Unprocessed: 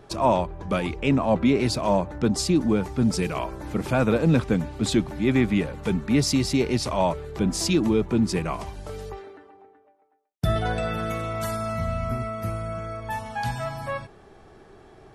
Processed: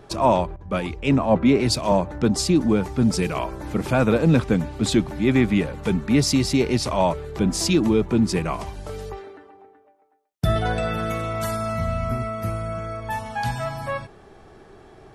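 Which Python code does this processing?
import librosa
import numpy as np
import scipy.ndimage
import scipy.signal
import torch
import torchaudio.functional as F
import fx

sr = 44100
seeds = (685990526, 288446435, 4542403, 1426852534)

y = fx.band_widen(x, sr, depth_pct=70, at=(0.56, 1.92))
y = y * 10.0 ** (2.5 / 20.0)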